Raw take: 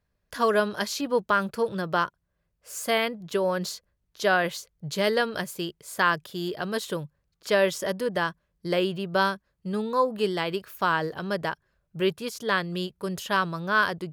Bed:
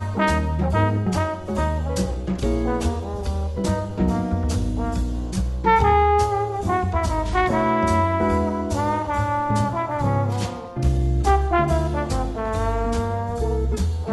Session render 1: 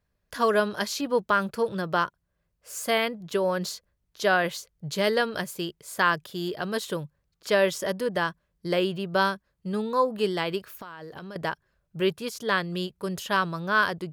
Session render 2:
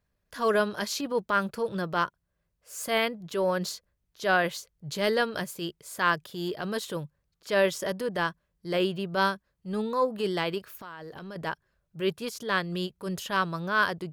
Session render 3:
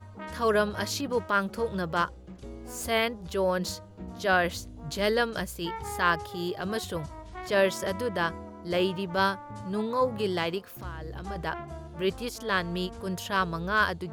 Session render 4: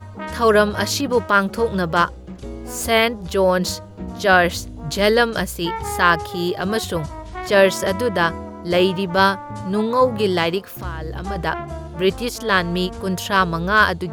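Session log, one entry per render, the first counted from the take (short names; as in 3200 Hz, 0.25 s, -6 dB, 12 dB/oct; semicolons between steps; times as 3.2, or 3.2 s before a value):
10.62–11.36 compressor 20:1, threshold -36 dBFS
transient shaper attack -7 dB, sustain -2 dB
add bed -20.5 dB
gain +10 dB; limiter -1 dBFS, peak gain reduction 1.5 dB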